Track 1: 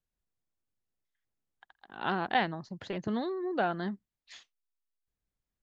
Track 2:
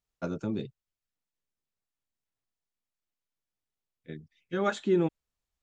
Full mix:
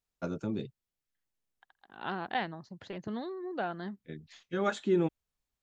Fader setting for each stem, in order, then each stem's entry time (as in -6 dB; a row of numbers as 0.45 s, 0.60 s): -5.0 dB, -2.0 dB; 0.00 s, 0.00 s